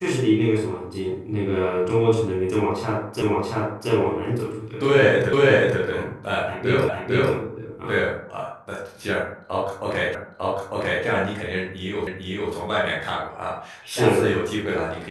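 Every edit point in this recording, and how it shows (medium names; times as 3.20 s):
3.22 s: repeat of the last 0.68 s
5.33 s: repeat of the last 0.48 s
6.89 s: repeat of the last 0.45 s
10.15 s: repeat of the last 0.9 s
12.07 s: repeat of the last 0.45 s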